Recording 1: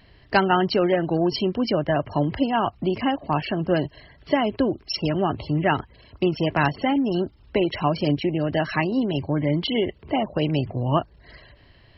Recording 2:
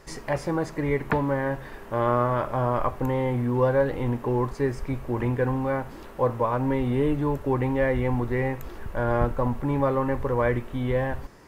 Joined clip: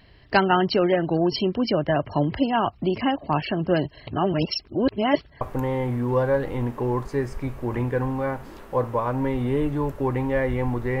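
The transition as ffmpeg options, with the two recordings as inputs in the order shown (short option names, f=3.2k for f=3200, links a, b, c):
-filter_complex "[0:a]apad=whole_dur=11,atrim=end=11,asplit=2[a][b];[a]atrim=end=4.072[c];[b]atrim=start=4.068:end=5.412,asetpts=PTS-STARTPTS,areverse[d];[1:a]atrim=start=2.868:end=8.46[e];[c][d]acrossfade=d=0.004:c1=hsin:c2=hsin[f];[f][e]acrossfade=d=0.004:c1=hsin:c2=hsin"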